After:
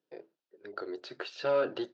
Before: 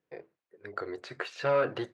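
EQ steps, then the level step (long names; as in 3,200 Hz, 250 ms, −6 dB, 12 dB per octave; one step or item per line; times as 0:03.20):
loudspeaker in its box 300–5,400 Hz, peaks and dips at 480 Hz −6 dB, 730 Hz −6 dB, 1,100 Hz −10 dB, 2,200 Hz −6 dB
parametric band 1,900 Hz −9 dB 0.82 octaves
+3.5 dB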